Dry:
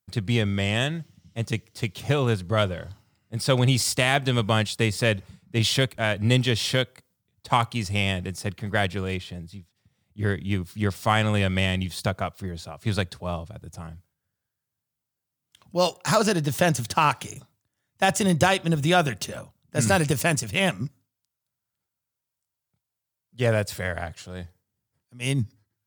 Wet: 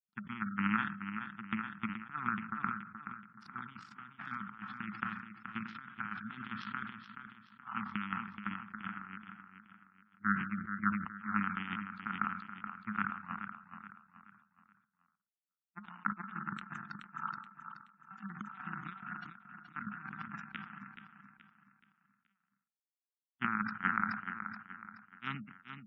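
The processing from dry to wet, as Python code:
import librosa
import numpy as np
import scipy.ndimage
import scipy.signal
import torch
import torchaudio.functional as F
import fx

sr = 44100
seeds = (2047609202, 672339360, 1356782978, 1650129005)

y = fx.wiener(x, sr, points=9)
y = fx.low_shelf_res(y, sr, hz=660.0, db=-7.0, q=3.0)
y = fx.rev_spring(y, sr, rt60_s=1.4, pass_ms=(45, 51), chirp_ms=70, drr_db=7.0)
y = fx.over_compress(y, sr, threshold_db=-28.0, ratio=-0.5)
y = fx.power_curve(y, sr, exponent=3.0)
y = fx.double_bandpass(y, sr, hz=530.0, octaves=2.7)
y = fx.spec_gate(y, sr, threshold_db=-25, keep='strong')
y = fx.echo_feedback(y, sr, ms=426, feedback_pct=39, wet_db=-9.0)
y = fx.sustainer(y, sr, db_per_s=80.0)
y = y * librosa.db_to_amplitude(15.5)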